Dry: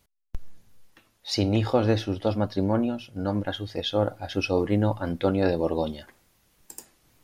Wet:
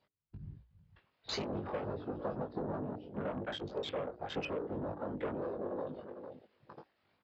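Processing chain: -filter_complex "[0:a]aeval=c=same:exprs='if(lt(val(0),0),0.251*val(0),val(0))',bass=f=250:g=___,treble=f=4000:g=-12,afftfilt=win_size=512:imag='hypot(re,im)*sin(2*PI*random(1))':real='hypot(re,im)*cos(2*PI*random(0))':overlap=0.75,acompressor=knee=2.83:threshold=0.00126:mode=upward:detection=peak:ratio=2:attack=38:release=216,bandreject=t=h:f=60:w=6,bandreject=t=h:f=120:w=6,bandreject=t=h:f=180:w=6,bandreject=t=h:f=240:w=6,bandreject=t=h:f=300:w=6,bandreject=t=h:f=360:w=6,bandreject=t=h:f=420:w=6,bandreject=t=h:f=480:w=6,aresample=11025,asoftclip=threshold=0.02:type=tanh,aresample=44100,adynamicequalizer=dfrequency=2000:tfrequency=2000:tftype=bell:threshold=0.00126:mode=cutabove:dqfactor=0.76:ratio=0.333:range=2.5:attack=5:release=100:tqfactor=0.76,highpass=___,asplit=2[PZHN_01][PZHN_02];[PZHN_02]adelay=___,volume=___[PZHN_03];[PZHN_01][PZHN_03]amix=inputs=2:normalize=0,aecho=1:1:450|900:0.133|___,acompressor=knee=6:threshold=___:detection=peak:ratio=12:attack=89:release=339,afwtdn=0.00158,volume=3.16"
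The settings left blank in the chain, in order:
-9, 84, 20, 0.631, 0.028, 0.00398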